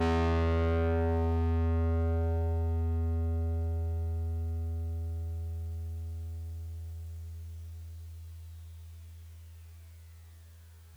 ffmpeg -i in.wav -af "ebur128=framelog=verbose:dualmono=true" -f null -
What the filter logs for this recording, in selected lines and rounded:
Integrated loudness:
  I:         -29.6 LUFS
  Threshold: -41.2 LUFS
Loudness range:
  LRA:        17.4 LU
  Threshold: -52.1 LUFS
  LRA low:   -44.7 LUFS
  LRA high:  -27.3 LUFS